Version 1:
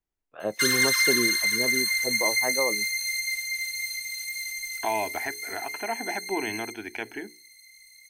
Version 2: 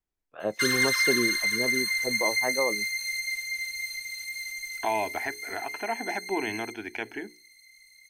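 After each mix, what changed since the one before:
background: add high shelf 4600 Hz -7.5 dB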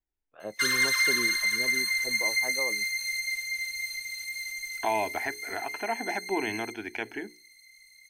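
first voice -8.5 dB

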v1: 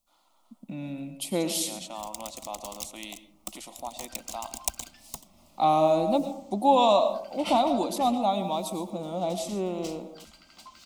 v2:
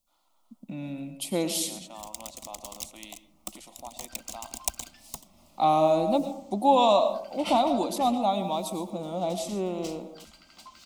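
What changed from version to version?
second voice -5.5 dB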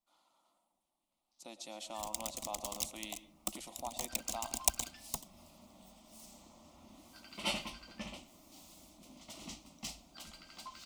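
first voice: muted

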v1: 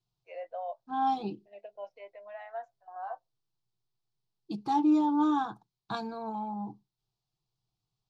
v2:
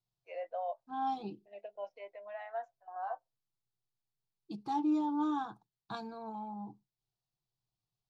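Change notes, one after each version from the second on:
second voice -6.5 dB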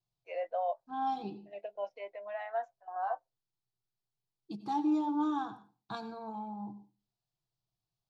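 first voice +4.5 dB; reverb: on, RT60 0.30 s

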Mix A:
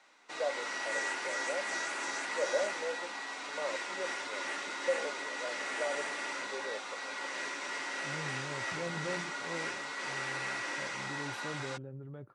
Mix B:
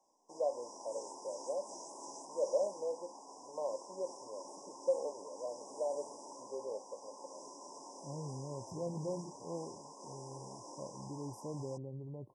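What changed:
background -7.0 dB; master: add brick-wall FIR band-stop 1100–4900 Hz

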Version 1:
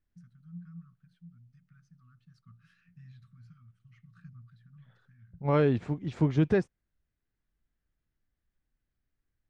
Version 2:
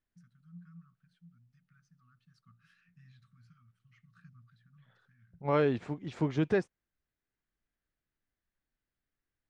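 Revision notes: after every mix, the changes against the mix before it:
master: add low shelf 200 Hz -11 dB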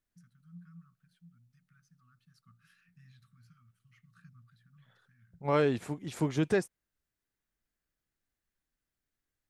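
second voice: remove air absorption 86 m; master: remove air absorption 71 m

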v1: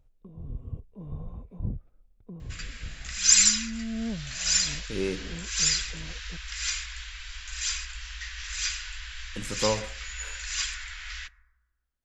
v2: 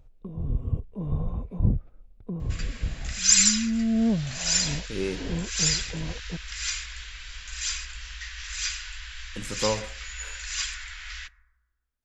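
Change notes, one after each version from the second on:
first sound +9.5 dB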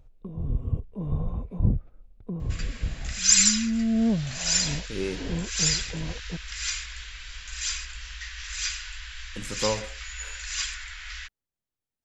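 speech: send off

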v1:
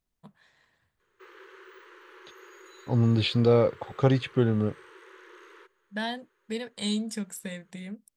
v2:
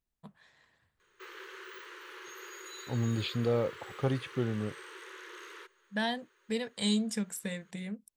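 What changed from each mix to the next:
second voice -8.5 dB; background: add high shelf 2100 Hz +11.5 dB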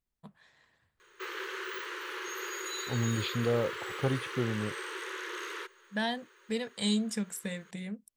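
background +8.5 dB

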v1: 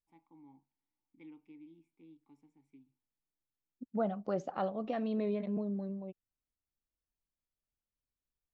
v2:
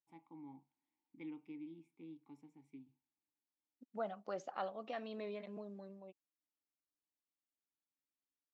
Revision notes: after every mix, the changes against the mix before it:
first voice +5.0 dB; second voice: add HPF 1200 Hz 6 dB/oct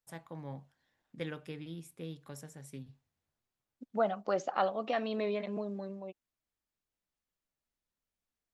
first voice: remove vowel filter u; second voice +11.0 dB

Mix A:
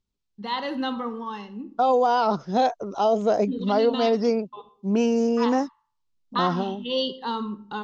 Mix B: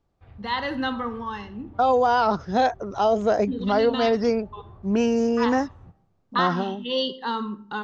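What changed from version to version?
background: unmuted; master: add bell 1700 Hz +7.5 dB 0.69 oct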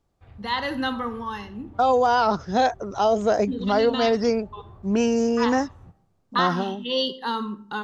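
master: remove air absorption 82 m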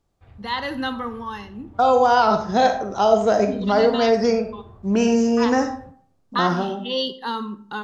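second voice: send on

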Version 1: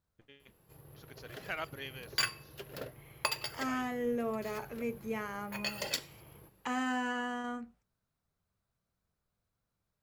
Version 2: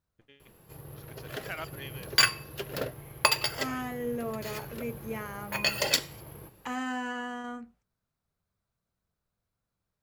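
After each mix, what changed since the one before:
background +9.5 dB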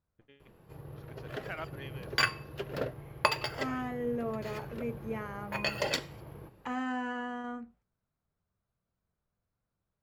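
master: add LPF 1800 Hz 6 dB/oct

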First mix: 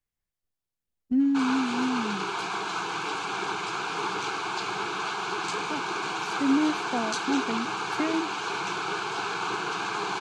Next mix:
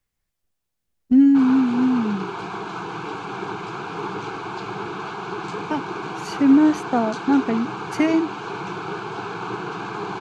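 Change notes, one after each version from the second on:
speech +9.5 dB; background: add tilt -3.5 dB/oct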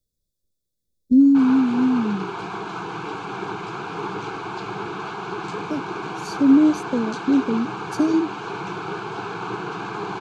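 speech: add brick-wall FIR band-stop 630–3300 Hz

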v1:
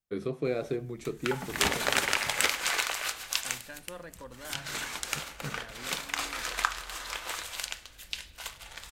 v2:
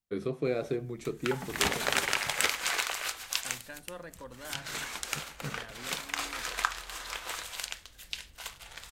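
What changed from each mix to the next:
background: send off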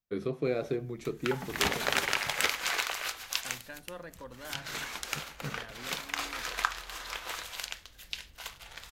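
master: add bell 8500 Hz -6 dB 0.51 oct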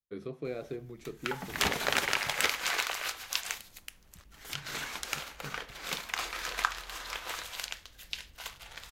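first voice -7.0 dB; second voice: muted; reverb: off

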